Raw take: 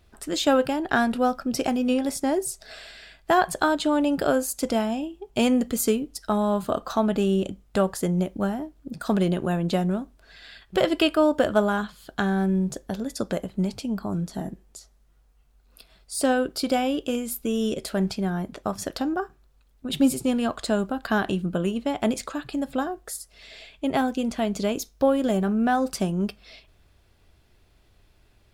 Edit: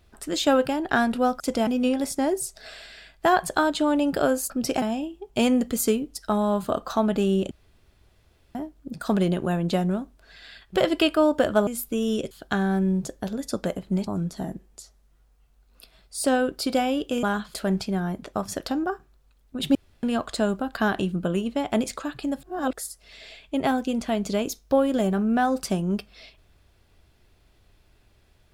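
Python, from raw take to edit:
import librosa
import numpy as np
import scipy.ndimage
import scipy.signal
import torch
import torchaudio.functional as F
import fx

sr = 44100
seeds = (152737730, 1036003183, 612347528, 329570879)

y = fx.edit(x, sr, fx.swap(start_s=1.4, length_s=0.32, other_s=4.55, other_length_s=0.27),
    fx.room_tone_fill(start_s=7.51, length_s=1.04),
    fx.swap(start_s=11.67, length_s=0.31, other_s=17.2, other_length_s=0.64),
    fx.cut(start_s=13.74, length_s=0.3),
    fx.room_tone_fill(start_s=20.05, length_s=0.28),
    fx.reverse_span(start_s=22.73, length_s=0.3), tone=tone)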